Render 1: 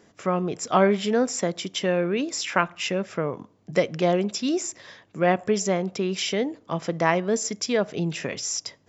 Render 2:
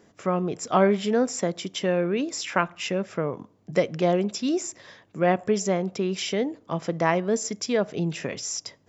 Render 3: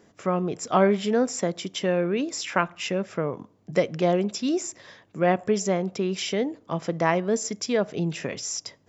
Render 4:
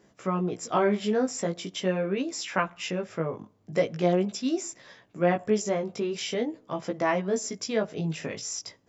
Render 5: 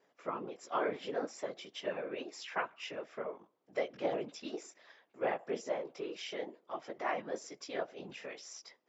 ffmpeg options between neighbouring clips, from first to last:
-af "equalizer=f=3.6k:w=0.34:g=-3"
-af anull
-af "flanger=delay=15:depth=4:speed=0.43"
-af "afftfilt=real='hypot(re,im)*cos(2*PI*random(0))':imag='hypot(re,im)*sin(2*PI*random(1))':win_size=512:overlap=0.75,highpass=420,lowpass=4.4k,volume=-2dB"

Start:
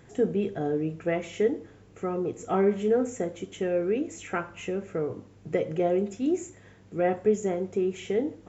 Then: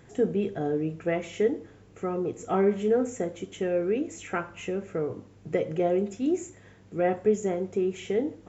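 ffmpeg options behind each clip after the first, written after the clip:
-af anull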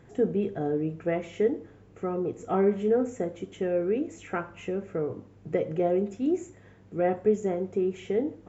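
-af "highshelf=f=2.7k:g=-9"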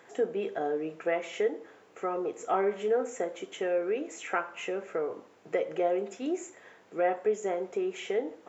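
-filter_complex "[0:a]highpass=590,asplit=2[a][b];[b]acompressor=threshold=-36dB:ratio=6,volume=1dB[c];[a][c]amix=inputs=2:normalize=0"

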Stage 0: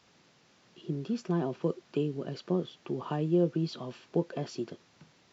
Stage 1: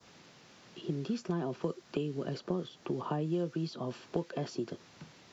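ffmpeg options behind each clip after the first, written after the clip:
-filter_complex "[0:a]adynamicequalizer=threshold=0.00126:dfrequency=2700:dqfactor=1:tfrequency=2700:tqfactor=1:attack=5:release=100:ratio=0.375:range=3:mode=cutabove:tftype=bell,acrossover=split=110|1200[a][b][c];[a]acompressor=threshold=-59dB:ratio=4[d];[b]acompressor=threshold=-39dB:ratio=4[e];[c]acompressor=threshold=-53dB:ratio=4[f];[d][e][f]amix=inputs=3:normalize=0,volume=6dB"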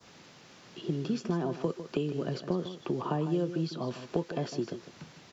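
-af "aecho=1:1:153:0.266,volume=3dB"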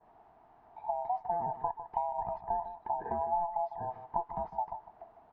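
-af "afftfilt=real='real(if(lt(b,1008),b+24*(1-2*mod(floor(b/24),2)),b),0)':imag='imag(if(lt(b,1008),b+24*(1-2*mod(floor(b/24),2)),b),0)':win_size=2048:overlap=0.75,lowpass=f=910:t=q:w=2.1,volume=-8dB"

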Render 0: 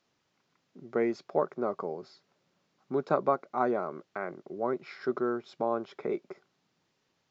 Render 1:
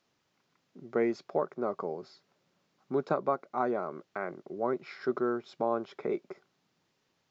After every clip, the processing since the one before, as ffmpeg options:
-af "alimiter=limit=-16dB:level=0:latency=1:release=492"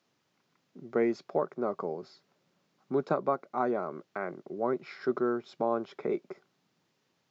-af "highpass=120,lowshelf=f=220:g=4.5"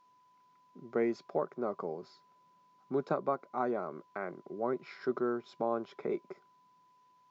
-af "aeval=exprs='val(0)+0.001*sin(2*PI*1000*n/s)':c=same,volume=-3.5dB"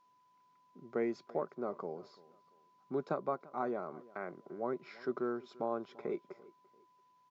-filter_complex "[0:a]asplit=2[a][b];[b]adelay=341,lowpass=f=3.5k:p=1,volume=-21dB,asplit=2[c][d];[d]adelay=341,lowpass=f=3.5k:p=1,volume=0.32[e];[a][c][e]amix=inputs=3:normalize=0,volume=-3.5dB"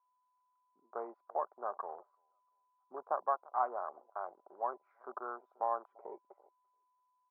-af "afwtdn=0.00708,asuperpass=centerf=950:order=4:qfactor=1.6,volume=7.5dB"

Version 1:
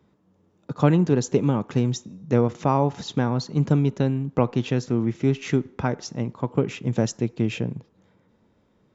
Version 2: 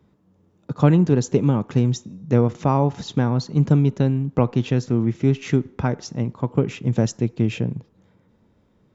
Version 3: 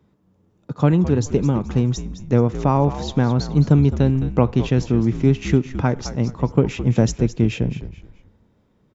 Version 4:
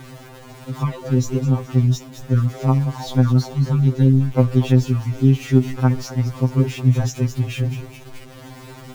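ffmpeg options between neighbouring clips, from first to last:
-af "lowshelf=f=190:g=6.5"
-filter_complex "[0:a]dynaudnorm=f=280:g=11:m=11.5dB,asplit=4[a][b][c][d];[b]adelay=213,afreqshift=-71,volume=-12dB[e];[c]adelay=426,afreqshift=-142,volume=-21.9dB[f];[d]adelay=639,afreqshift=-213,volume=-31.8dB[g];[a][e][f][g]amix=inputs=4:normalize=0,volume=-1dB"
-af "aeval=exprs='val(0)+0.5*0.0355*sgn(val(0))':c=same,afftfilt=real='re*2.45*eq(mod(b,6),0)':imag='im*2.45*eq(mod(b,6),0)':win_size=2048:overlap=0.75,volume=-1dB"

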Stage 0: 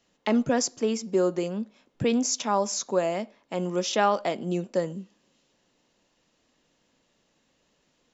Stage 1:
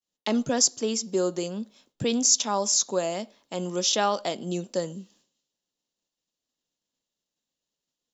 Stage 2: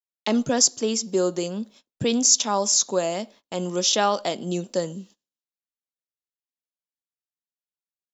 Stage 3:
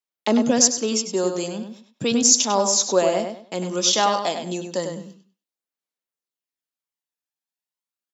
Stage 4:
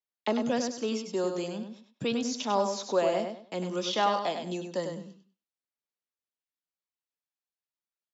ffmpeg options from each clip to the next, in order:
-af "agate=range=-33dB:threshold=-56dB:ratio=3:detection=peak,highshelf=f=4.9k:g=-5,aexciter=amount=5.2:drive=2.4:freq=3.2k,volume=-2dB"
-af "agate=range=-24dB:threshold=-51dB:ratio=16:detection=peak,volume=3dB"
-filter_complex "[0:a]highpass=200,aphaser=in_gain=1:out_gain=1:delay=1.2:decay=0.34:speed=0.34:type=sinusoidal,asplit=2[a][b];[b]adelay=99,lowpass=f=4.1k:p=1,volume=-6dB,asplit=2[c][d];[d]adelay=99,lowpass=f=4.1k:p=1,volume=0.27,asplit=2[e][f];[f]adelay=99,lowpass=f=4.1k:p=1,volume=0.27[g];[a][c][e][g]amix=inputs=4:normalize=0,volume=1.5dB"
-filter_complex "[0:a]lowpass=5.8k,acrossover=split=460|670[a][b][c];[a]alimiter=limit=-20dB:level=0:latency=1[d];[d][b][c]amix=inputs=3:normalize=0,acrossover=split=3700[e][f];[f]acompressor=threshold=-38dB:ratio=4:attack=1:release=60[g];[e][g]amix=inputs=2:normalize=0,volume=-6dB"

